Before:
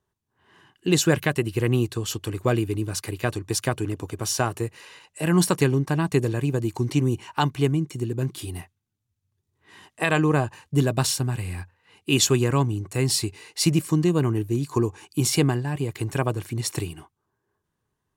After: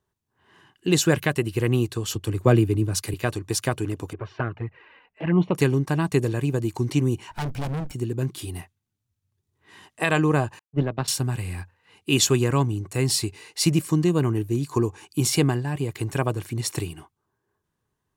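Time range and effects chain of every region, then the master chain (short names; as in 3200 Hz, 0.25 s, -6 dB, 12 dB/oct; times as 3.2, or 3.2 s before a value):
2.15–3.14 low shelf 460 Hz +6 dB + three-band expander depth 40%
4.13–5.55 LPF 2500 Hz 24 dB/oct + envelope flanger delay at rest 4.9 ms, full sweep at -17 dBFS
7.31–7.94 minimum comb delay 1.3 ms + low shelf 430 Hz +10 dB + overloaded stage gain 26 dB
10.59–11.08 power-law curve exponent 1.4 + air absorption 320 m + three-band expander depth 70%
whole clip: dry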